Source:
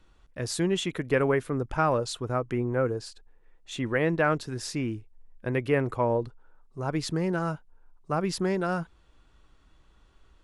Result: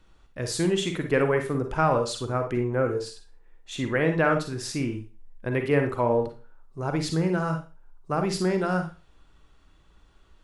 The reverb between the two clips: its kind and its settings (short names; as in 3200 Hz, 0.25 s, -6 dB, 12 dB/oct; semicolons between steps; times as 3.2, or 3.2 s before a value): Schroeder reverb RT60 0.32 s, DRR 5 dB; gain +1 dB